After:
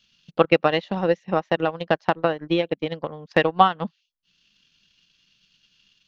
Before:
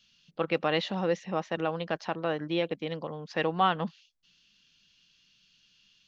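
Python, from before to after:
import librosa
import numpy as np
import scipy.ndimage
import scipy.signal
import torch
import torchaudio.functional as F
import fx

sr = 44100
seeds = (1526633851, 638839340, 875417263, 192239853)

y = fx.high_shelf(x, sr, hz=4300.0, db=-4.0)
y = fx.transient(y, sr, attack_db=11, sustain_db=-12)
y = F.gain(torch.from_numpy(y), 3.0).numpy()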